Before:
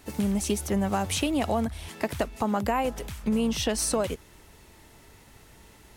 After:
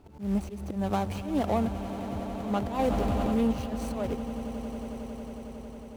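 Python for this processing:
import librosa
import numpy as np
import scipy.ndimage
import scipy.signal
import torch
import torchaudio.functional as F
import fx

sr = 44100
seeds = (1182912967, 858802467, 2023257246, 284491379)

p1 = scipy.signal.medfilt(x, 25)
p2 = fx.auto_swell(p1, sr, attack_ms=153.0)
p3 = p2 + fx.echo_swell(p2, sr, ms=91, loudest=8, wet_db=-16, dry=0)
y = fx.env_flatten(p3, sr, amount_pct=70, at=(2.79, 3.52))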